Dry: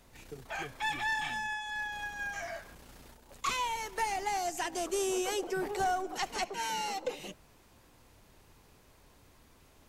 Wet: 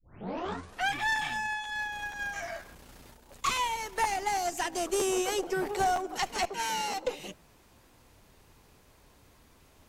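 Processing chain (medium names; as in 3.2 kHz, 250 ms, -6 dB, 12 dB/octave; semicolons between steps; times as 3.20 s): tape start-up on the opening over 0.96 s; Chebyshev shaper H 4 -23 dB, 7 -30 dB, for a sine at -20.5 dBFS; crackling interface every 0.48 s, samples 512, repeat, from 0.67 s; trim +3.5 dB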